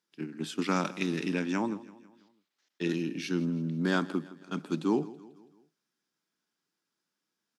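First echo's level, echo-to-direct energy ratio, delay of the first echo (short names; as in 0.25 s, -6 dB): -19.0 dB, -18.0 dB, 0.164 s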